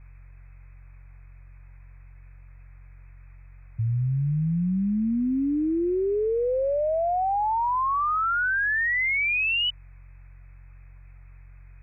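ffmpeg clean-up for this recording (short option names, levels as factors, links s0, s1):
-af "bandreject=f=45.4:t=h:w=4,bandreject=f=90.8:t=h:w=4,bandreject=f=136.2:t=h:w=4,afftdn=nr=27:nf=-47"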